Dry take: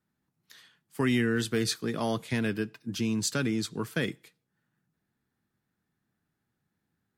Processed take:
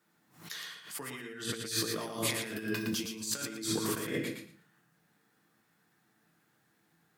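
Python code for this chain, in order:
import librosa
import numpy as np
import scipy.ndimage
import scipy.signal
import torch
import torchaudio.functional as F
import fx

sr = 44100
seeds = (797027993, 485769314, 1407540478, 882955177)

y = scipy.signal.sosfilt(scipy.signal.butter(2, 140.0, 'highpass', fs=sr, output='sos'), x)
y = fx.low_shelf(y, sr, hz=270.0, db=-9.5)
y = fx.hum_notches(y, sr, base_hz=60, count=7)
y = fx.room_shoebox(y, sr, seeds[0], volume_m3=33.0, walls='mixed', distance_m=0.48)
y = fx.over_compress(y, sr, threshold_db=-41.0, ratio=-1.0)
y = fx.high_shelf(y, sr, hz=7900.0, db=12.0, at=(1.68, 3.87))
y = fx.echo_feedback(y, sr, ms=115, feedback_pct=18, wet_db=-6.0)
y = fx.pre_swell(y, sr, db_per_s=130.0)
y = F.gain(torch.from_numpy(y), 1.5).numpy()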